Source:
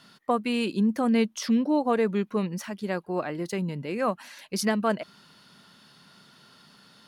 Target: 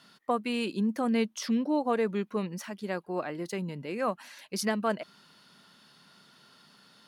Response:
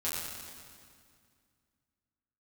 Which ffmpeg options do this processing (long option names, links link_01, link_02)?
-af "lowshelf=frequency=110:gain=-9,volume=-3dB"